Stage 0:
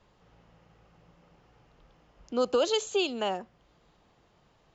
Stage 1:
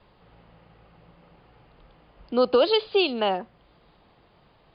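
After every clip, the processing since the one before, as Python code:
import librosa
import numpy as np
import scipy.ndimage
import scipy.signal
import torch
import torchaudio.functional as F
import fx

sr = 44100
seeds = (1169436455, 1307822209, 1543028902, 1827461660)

y = scipy.signal.sosfilt(scipy.signal.cheby1(10, 1.0, 4900.0, 'lowpass', fs=sr, output='sos'), x)
y = y * librosa.db_to_amplitude(6.5)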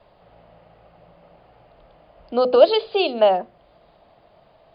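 y = fx.peak_eq(x, sr, hz=640.0, db=13.5, octaves=0.5)
y = fx.hum_notches(y, sr, base_hz=50, count=10)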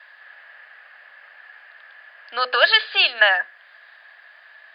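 y = fx.highpass_res(x, sr, hz=1700.0, q=16.0)
y = y * librosa.db_to_amplitude(6.5)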